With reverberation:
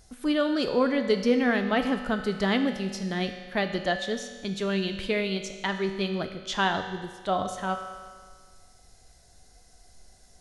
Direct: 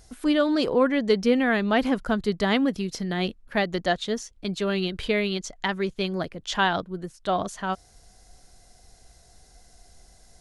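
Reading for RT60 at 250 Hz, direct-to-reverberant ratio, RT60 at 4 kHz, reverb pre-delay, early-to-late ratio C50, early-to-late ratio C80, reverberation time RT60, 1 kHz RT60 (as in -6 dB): 1.7 s, 5.5 dB, 1.6 s, 4 ms, 7.5 dB, 9.0 dB, 1.7 s, 1.7 s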